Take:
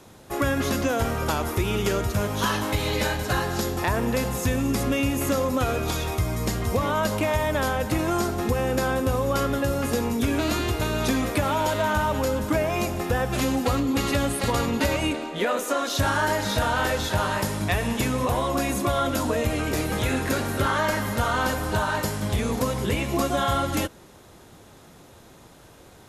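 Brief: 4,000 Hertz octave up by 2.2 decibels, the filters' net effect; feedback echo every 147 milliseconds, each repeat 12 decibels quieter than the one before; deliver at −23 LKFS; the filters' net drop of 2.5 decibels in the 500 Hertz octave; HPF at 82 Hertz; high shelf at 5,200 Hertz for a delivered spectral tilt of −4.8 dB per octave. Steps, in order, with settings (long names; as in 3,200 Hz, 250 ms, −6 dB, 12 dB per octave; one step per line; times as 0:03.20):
high-pass filter 82 Hz
parametric band 500 Hz −3 dB
parametric band 4,000 Hz +6 dB
high-shelf EQ 5,200 Hz −8 dB
repeating echo 147 ms, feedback 25%, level −12 dB
level +2.5 dB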